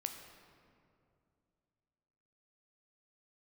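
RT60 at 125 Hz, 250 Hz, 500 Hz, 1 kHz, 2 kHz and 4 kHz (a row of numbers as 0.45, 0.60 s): 3.1, 2.9, 2.7, 2.3, 1.8, 1.3 s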